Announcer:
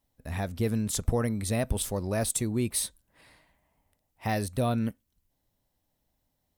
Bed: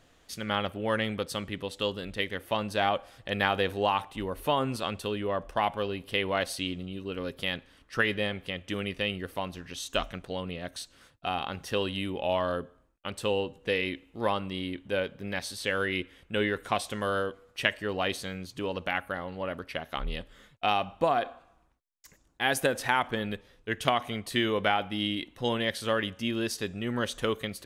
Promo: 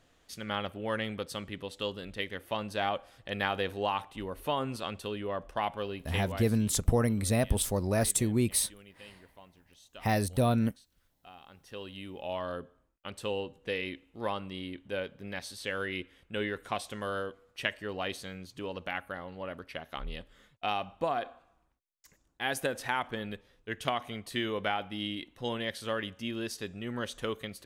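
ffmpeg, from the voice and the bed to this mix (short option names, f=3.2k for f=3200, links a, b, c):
-filter_complex "[0:a]adelay=5800,volume=1dB[a];[1:a]volume=11dB,afade=t=out:st=6.01:d=0.54:silence=0.149624,afade=t=in:st=11.44:d=1.26:silence=0.16788[b];[a][b]amix=inputs=2:normalize=0"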